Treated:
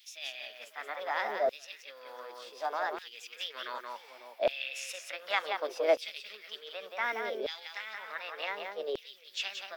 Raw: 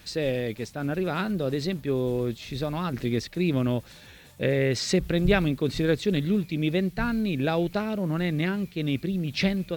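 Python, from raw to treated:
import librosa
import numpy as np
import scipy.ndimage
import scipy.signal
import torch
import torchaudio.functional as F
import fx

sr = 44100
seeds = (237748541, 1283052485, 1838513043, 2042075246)

y = scipy.signal.sosfilt(scipy.signal.butter(12, 210.0, 'highpass', fs=sr, output='sos'), x)
y = fx.peak_eq(y, sr, hz=5800.0, db=-12.0, octaves=1.7)
y = fx.formant_shift(y, sr, semitones=5)
y = fx.echo_multitap(y, sr, ms=(177, 547), db=(-6.0, -19.5))
y = fx.filter_lfo_highpass(y, sr, shape='saw_down', hz=0.67, low_hz=580.0, high_hz=3400.0, q=1.8)
y = y * librosa.db_to_amplitude(-3.5)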